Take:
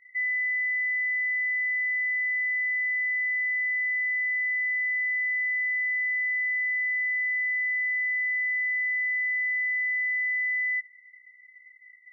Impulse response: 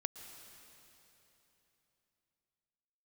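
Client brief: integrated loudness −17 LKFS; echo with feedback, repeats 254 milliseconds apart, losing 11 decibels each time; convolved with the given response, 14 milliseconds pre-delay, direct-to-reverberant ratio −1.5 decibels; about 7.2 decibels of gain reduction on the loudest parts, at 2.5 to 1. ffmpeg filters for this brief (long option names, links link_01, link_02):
-filter_complex "[0:a]acompressor=threshold=-37dB:ratio=2.5,aecho=1:1:254|508|762:0.282|0.0789|0.0221,asplit=2[link_01][link_02];[1:a]atrim=start_sample=2205,adelay=14[link_03];[link_02][link_03]afir=irnorm=-1:irlink=0,volume=2.5dB[link_04];[link_01][link_04]amix=inputs=2:normalize=0,volume=6.5dB"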